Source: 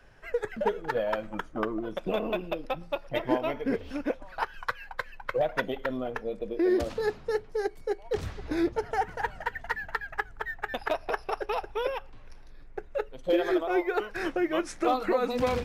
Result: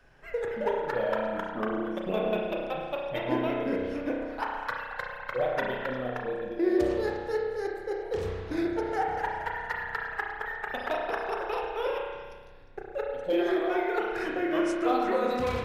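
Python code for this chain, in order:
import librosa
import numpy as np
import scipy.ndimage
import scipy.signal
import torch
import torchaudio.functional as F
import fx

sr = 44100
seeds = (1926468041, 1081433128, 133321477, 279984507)

y = fx.echo_stepped(x, sr, ms=118, hz=640.0, octaves=1.4, feedback_pct=70, wet_db=-7)
y = fx.rev_spring(y, sr, rt60_s=1.4, pass_ms=(32,), chirp_ms=25, drr_db=-1.0)
y = F.gain(torch.from_numpy(y), -3.5).numpy()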